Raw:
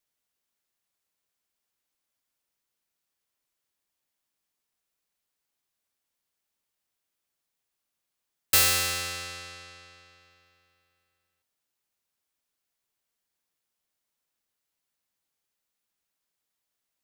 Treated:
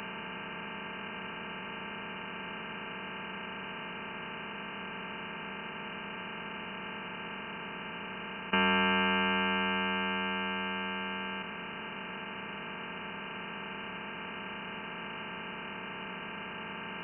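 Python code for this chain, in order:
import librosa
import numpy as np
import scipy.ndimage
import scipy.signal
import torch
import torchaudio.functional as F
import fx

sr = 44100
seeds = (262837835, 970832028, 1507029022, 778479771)

y = fx.bin_compress(x, sr, power=0.2)
y = fx.freq_invert(y, sr, carrier_hz=2900)
y = fx.highpass(y, sr, hz=130.0, slope=6)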